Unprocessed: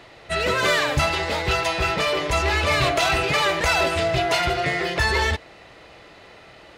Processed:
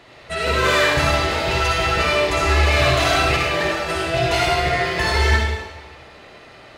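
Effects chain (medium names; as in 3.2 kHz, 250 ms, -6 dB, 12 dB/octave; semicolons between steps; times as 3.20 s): 3.36–4.08 s: compressor with a negative ratio -25 dBFS, ratio -0.5; reverberation RT60 1.2 s, pre-delay 48 ms, DRR -4 dB; trim -2 dB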